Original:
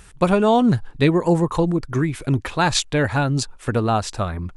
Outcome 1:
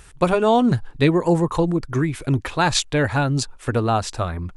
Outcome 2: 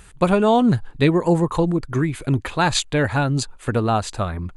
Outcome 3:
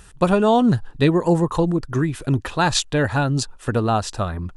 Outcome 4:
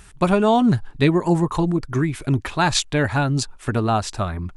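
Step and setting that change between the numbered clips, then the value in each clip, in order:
notch filter, centre frequency: 200, 5,500, 2,200, 500 Hertz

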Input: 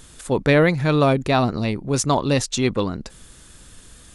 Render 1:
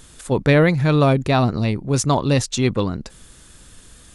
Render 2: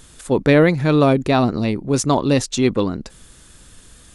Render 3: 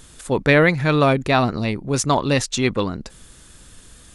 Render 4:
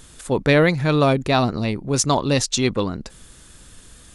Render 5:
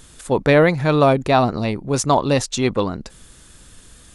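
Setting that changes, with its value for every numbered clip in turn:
dynamic equaliser, frequency: 110, 300, 1,900, 5,100, 770 Hertz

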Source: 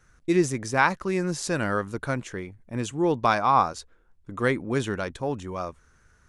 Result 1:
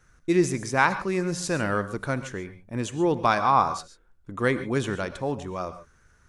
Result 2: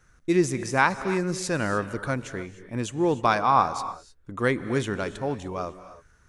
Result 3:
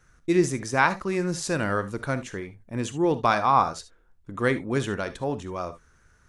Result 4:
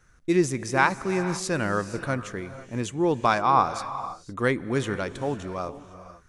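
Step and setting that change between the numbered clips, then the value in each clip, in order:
reverb whose tail is shaped and stops, gate: 160, 330, 90, 530 milliseconds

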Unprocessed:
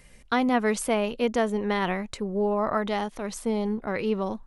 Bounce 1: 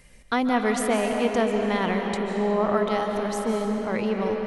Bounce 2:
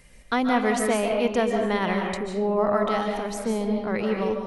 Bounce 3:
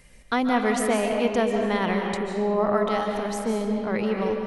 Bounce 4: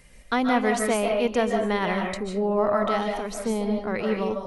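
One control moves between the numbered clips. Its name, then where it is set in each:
comb and all-pass reverb, RT60: 4.9, 0.93, 2.1, 0.42 seconds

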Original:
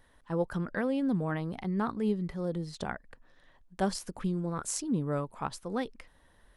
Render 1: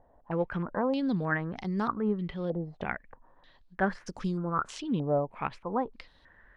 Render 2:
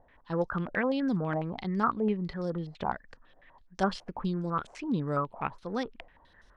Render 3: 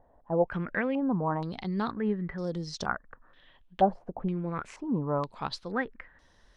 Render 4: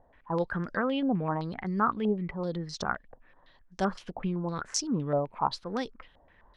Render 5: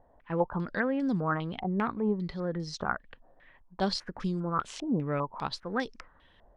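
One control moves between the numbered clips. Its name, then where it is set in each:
low-pass on a step sequencer, speed: 3.2, 12, 2.1, 7.8, 5 Hertz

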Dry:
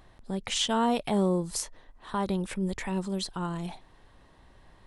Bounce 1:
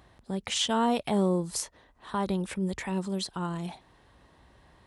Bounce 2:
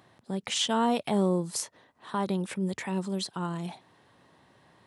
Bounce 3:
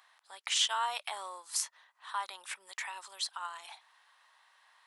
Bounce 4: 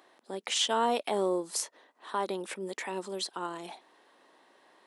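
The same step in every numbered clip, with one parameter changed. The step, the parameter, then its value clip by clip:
high-pass filter, corner frequency: 44, 110, 970, 300 Hertz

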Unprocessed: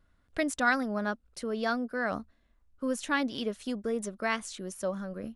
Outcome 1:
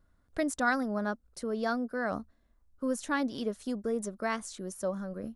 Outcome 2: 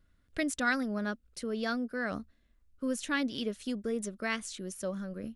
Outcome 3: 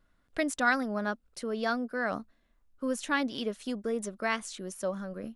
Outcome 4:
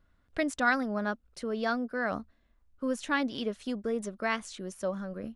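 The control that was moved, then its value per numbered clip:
parametric band, centre frequency: 2,700, 870, 69, 15,000 Hertz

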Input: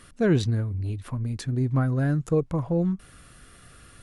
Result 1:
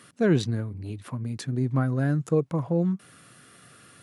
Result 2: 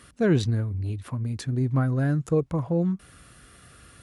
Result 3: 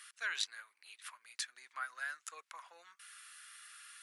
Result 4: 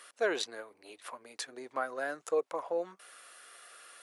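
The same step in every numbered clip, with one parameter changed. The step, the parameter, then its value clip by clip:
high-pass filter, corner frequency: 120, 43, 1,400, 510 Hertz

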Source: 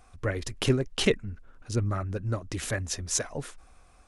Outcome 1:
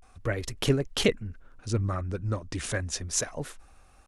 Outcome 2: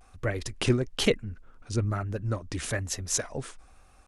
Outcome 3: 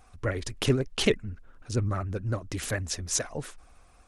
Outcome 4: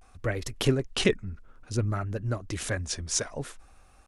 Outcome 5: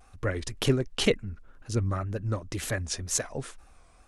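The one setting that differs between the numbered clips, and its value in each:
pitch vibrato, speed: 0.32, 1.1, 16, 0.58, 2 Hertz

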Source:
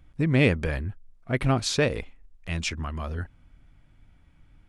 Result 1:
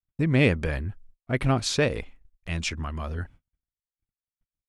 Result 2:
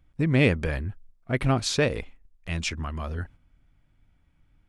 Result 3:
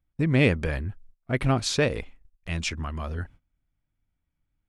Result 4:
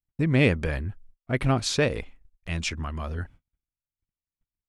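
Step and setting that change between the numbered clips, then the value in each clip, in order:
noise gate, range: −56, −7, −22, −43 decibels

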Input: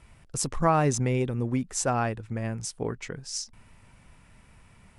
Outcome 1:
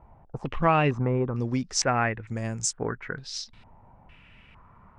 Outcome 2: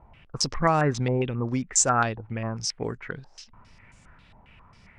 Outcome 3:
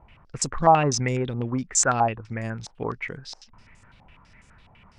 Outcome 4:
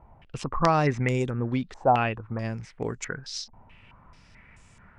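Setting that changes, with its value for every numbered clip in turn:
low-pass on a step sequencer, speed: 2.2, 7.4, 12, 4.6 Hertz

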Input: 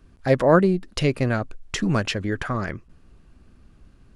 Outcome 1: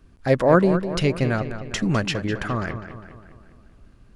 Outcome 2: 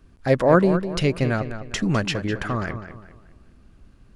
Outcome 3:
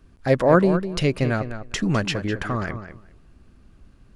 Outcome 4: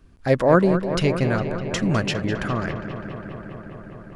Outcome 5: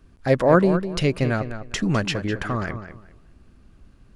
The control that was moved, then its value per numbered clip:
feedback echo with a low-pass in the loop, feedback: 53, 36, 15, 84, 22%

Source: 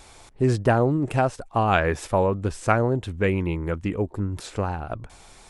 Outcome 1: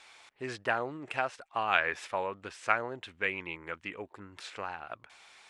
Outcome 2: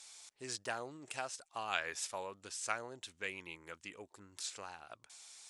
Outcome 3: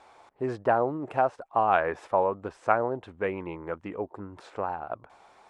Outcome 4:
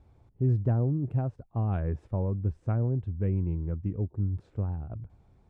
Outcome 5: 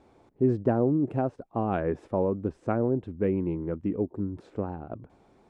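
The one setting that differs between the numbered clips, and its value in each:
resonant band-pass, frequency: 2,300, 6,400, 860, 100, 280 Hertz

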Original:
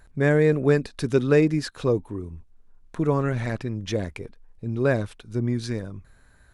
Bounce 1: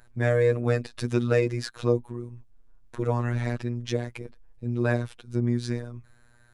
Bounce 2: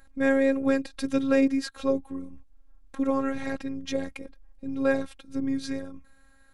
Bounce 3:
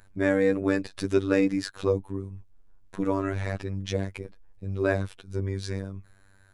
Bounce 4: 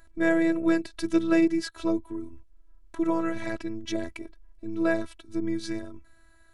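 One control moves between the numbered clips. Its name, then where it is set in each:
phases set to zero, frequency: 120, 270, 97, 330 Hertz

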